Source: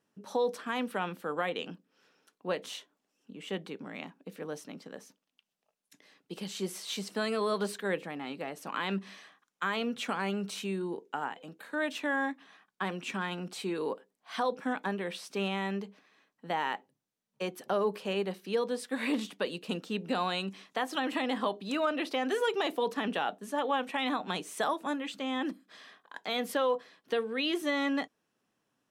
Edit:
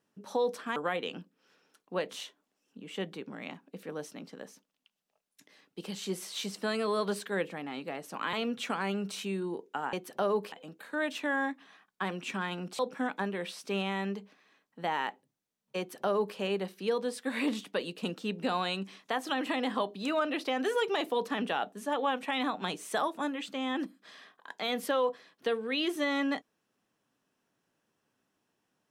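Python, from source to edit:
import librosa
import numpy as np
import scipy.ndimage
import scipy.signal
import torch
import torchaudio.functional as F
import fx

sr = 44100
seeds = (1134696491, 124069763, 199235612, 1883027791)

y = fx.edit(x, sr, fx.cut(start_s=0.76, length_s=0.53),
    fx.cut(start_s=8.86, length_s=0.86),
    fx.cut(start_s=13.59, length_s=0.86),
    fx.duplicate(start_s=17.44, length_s=0.59, to_s=11.32), tone=tone)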